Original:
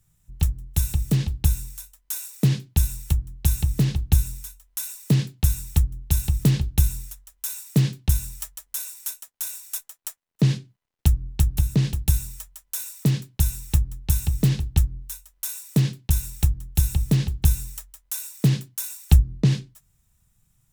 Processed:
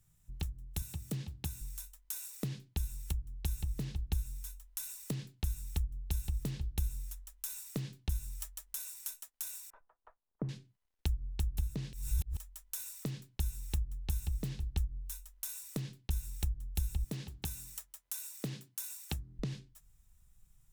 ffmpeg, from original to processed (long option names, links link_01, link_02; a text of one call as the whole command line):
ffmpeg -i in.wav -filter_complex "[0:a]asettb=1/sr,asplit=3[link_01][link_02][link_03];[link_01]atrim=end=0.824[link_04];[link_02]atrim=start=0.82:end=1.61,asetpts=PTS-STARTPTS,afade=type=in:duration=0.004:curve=qsin,afade=type=out:start_time=0.786:duration=0.004:curve=qsin,highpass=frequency=80:width=0.5412,highpass=frequency=80:width=1.3066[link_05];[link_03]atrim=start=1.606[link_06];[link_04][link_05]acrossfade=duration=0.004:curve1=hsin:curve2=qsin[link_07];[link_07][link_06]acrossfade=duration=0.004:curve1=qsin:curve2=hsin,asettb=1/sr,asplit=3[link_08][link_09][link_10];[link_08]atrim=end=9.704[link_11];[link_09]atrim=start=9.7:end=10.49,asetpts=PTS-STARTPTS,afade=type=in:duration=0.004:curve=qsin,afade=type=out:start_time=0.786:duration=0.004:curve=qsin,lowpass=frequency=1200:width=0.5412,lowpass=frequency=1200:width=1.3066[link_12];[link_10]atrim=start=10.486[link_13];[link_11][link_12]acrossfade=duration=0.004:curve1=hsin:curve2=qsin[link_14];[link_14][link_13]acrossfade=duration=0.004:curve1=qsin:curve2=hsin,asettb=1/sr,asplit=3[link_15][link_16][link_17];[link_15]atrim=end=17.044[link_18];[link_16]atrim=start=17.04:end=19.39,asetpts=PTS-STARTPTS,afade=type=in:duration=0.004:curve=qsin,afade=type=out:start_time=2.346:duration=0.004:curve=qsin,highpass=150[link_19];[link_17]atrim=start=19.386[link_20];[link_18][link_19]acrossfade=duration=0.004:curve1=hsin:curve2=qsin[link_21];[link_21][link_20]acrossfade=duration=0.004:curve1=qsin:curve2=hsin,asplit=3[link_22][link_23][link_24];[link_22]atrim=end=11.932[link_25];[link_23]atrim=start=11.928:end=12.372,asetpts=PTS-STARTPTS,areverse[link_26];[link_24]atrim=start=12.368[link_27];[link_25][link_26]acrossfade=duration=0.004:curve1=hsin:curve2=hsin[link_28];[link_28][link_27]acrossfade=duration=0.004:curve1=hsin:curve2=hsin,acompressor=threshold=-35dB:ratio=2.5,asubboost=boost=3.5:cutoff=59,volume=-5dB" out.wav